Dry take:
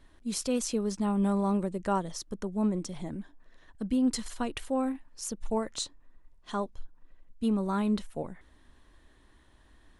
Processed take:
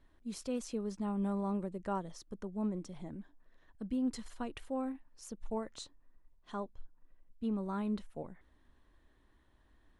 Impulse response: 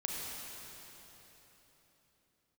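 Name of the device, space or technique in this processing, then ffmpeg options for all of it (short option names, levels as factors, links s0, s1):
behind a face mask: -filter_complex "[0:a]highshelf=f=3400:g=-8,asettb=1/sr,asplit=3[s0][s1][s2];[s0]atrim=end=6.634[s3];[s1]atrim=start=6.63:end=7.54,asetpts=PTS-STARTPTS,afade=t=in:d=0.004:c=qsin,afade=t=out:st=0.906:d=0.004:c=qsin,highshelf=f=8100:g=-11[s4];[s2]atrim=start=7.536[s5];[s3][s4]acrossfade=d=0.004:c1=hsin:c2=qsin[s6];[s6][s5]acrossfade=d=0.004:c1=qsin:c2=hsin,volume=0.422"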